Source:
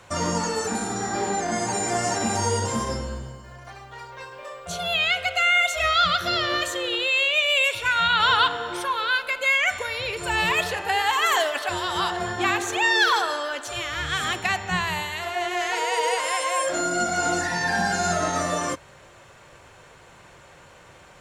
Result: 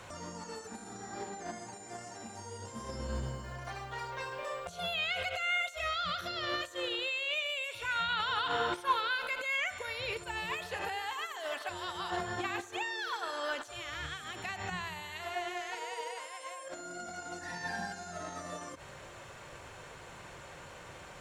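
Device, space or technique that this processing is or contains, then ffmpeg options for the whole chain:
de-esser from a sidechain: -filter_complex "[0:a]asplit=2[s0][s1];[s1]highpass=f=5900:w=0.5412,highpass=f=5900:w=1.3066,apad=whole_len=935265[s2];[s0][s2]sidechaincompress=threshold=0.00282:ratio=16:attack=0.82:release=60"

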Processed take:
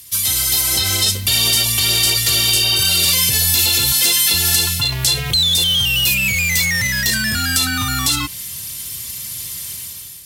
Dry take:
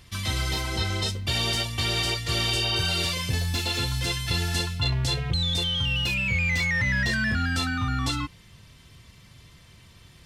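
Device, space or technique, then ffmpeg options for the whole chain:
FM broadcast chain: -filter_complex "[0:a]asettb=1/sr,asplit=3[s0][s1][s2];[s0]atrim=end=3.924[s3];[s1]atrim=start=3.92:end=4.34,asetpts=PTS-STARTPTS,afade=t=in:d=0.004:c=qsin,afade=t=out:st=0.416:d=0.004:c=qsin,highpass=f=200:w=0.5412,highpass=f=200:w=1.3066[s4];[s2]atrim=start=4.336[s5];[s3][s4]acrossfade=d=0.004:c1=hsin:c2=qsin[s6];[s6][s5]acrossfade=d=0.004:c1=qsin:c2=hsin,highpass=54,dynaudnorm=f=570:g=3:m=5.01,acrossover=split=370|4700[s7][s8][s9];[s7]acompressor=threshold=0.158:ratio=4[s10];[s8]acompressor=threshold=0.112:ratio=4[s11];[s9]acompressor=threshold=0.0141:ratio=4[s12];[s10][s11][s12]amix=inputs=3:normalize=0,aemphasis=mode=production:type=75fm,alimiter=limit=0.316:level=0:latency=1:release=41,asoftclip=type=hard:threshold=0.266,lowpass=f=15000:w=0.5412,lowpass=f=15000:w=1.3066,aemphasis=mode=production:type=75fm,volume=0.75"

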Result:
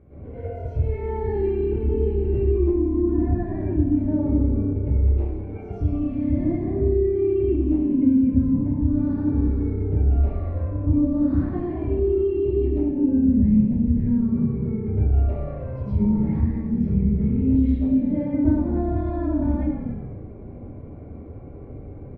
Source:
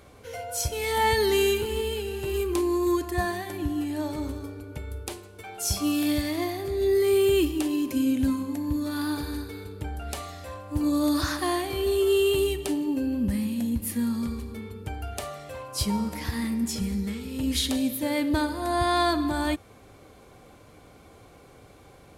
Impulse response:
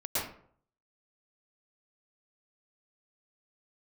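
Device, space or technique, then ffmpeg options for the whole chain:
television next door: -filter_complex "[0:a]asettb=1/sr,asplit=3[s0][s1][s2];[s0]atrim=end=14.214[s3];[s1]atrim=start=14.21:end=14.73,asetpts=PTS-STARTPTS,afade=t=in:d=0.004:c=qsin,afade=t=out:st=0.516:d=0.004:c=qsin,highpass=170[s4];[s2]atrim=start=14.726[s5];[s3][s4]acrossfade=d=0.004:c1=hsin:c2=qsin[s6];[s6][s5]acrossfade=d=0.004:c1=qsin:c2=hsin,equalizer=f=2300:w=1.1:g=13.5,asplit=8[s7][s8][s9][s10][s11][s12][s13][s14];[s8]adelay=90,afreqshift=-33,volume=0.355[s15];[s9]adelay=180,afreqshift=-66,volume=0.2[s16];[s10]adelay=270,afreqshift=-99,volume=0.111[s17];[s11]adelay=360,afreqshift=-132,volume=0.0624[s18];[s12]adelay=450,afreqshift=-165,volume=0.0351[s19];[s13]adelay=540,afreqshift=-198,volume=0.0195[s20];[s14]adelay=630,afreqshift=-231,volume=0.011[s21];[s7][s15][s16][s17][s18][s19][s20][s21]amix=inputs=8:normalize=0,acompressor=threshold=0.0282:ratio=3,lowpass=290[s22];[1:a]atrim=start_sample=2205[s23];[s22][s23]afir=irnorm=-1:irlink=0,volume=2.51"

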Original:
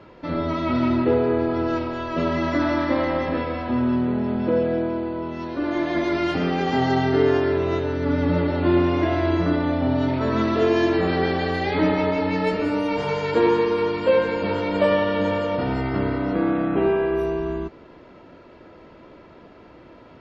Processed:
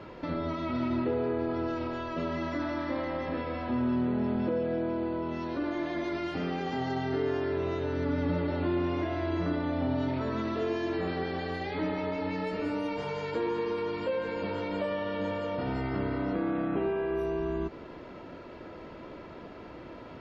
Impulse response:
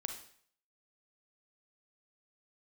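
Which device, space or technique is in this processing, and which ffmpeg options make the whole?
de-esser from a sidechain: -filter_complex "[0:a]asplit=2[s0][s1];[s1]highpass=f=4000:p=1,apad=whole_len=890886[s2];[s0][s2]sidechaincompress=threshold=0.00316:ratio=3:attack=4.5:release=99,volume=1.19"

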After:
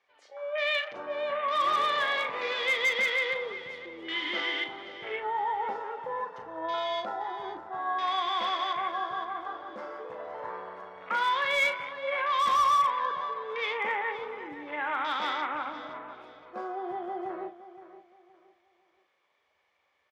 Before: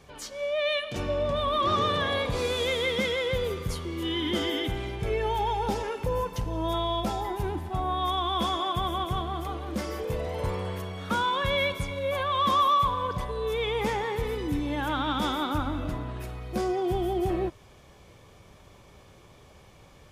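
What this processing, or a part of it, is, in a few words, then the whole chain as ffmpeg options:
megaphone: -filter_complex "[0:a]afwtdn=0.0158,asettb=1/sr,asplit=3[s0][s1][s2];[s0]atrim=end=15.554[s3];[s1]atrim=start=15.55:end=16.87,asetpts=PTS-STARTPTS,afade=t=in:d=0.004:c=qsin,afade=t=out:st=1.316:d=0.004:c=qsin,bandreject=f=1900:w=7.2[s4];[s2]atrim=start=16.866[s5];[s3][s4]acrossfade=d=0.004:c1=hsin:c2=qsin[s6];[s6][s5]acrossfade=d=0.004:c1=qsin:c2=hsin,highpass=690,lowpass=3900,equalizer=f=2000:t=o:w=0.38:g=8,aecho=1:1:519|1038|1557:0.2|0.0599|0.018,asoftclip=type=hard:threshold=0.0891,asplit=2[s7][s8];[s8]adelay=37,volume=0.335[s9];[s7][s9]amix=inputs=2:normalize=0"

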